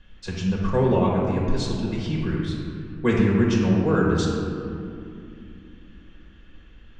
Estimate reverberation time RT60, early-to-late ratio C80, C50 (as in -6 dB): 2.6 s, 1.5 dB, 0.0 dB